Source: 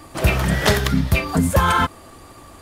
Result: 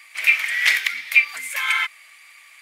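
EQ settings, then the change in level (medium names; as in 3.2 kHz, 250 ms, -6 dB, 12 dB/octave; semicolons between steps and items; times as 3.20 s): resonant high-pass 2.2 kHz, resonance Q 9.1; -4.0 dB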